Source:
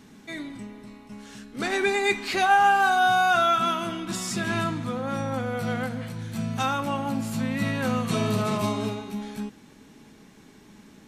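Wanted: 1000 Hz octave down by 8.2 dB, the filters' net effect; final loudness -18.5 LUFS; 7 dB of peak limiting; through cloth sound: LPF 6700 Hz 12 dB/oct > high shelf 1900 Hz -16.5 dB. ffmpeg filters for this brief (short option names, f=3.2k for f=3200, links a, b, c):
-af "equalizer=f=1k:t=o:g=-8,alimiter=limit=-19.5dB:level=0:latency=1,lowpass=6.7k,highshelf=f=1.9k:g=-16.5,volume=13.5dB"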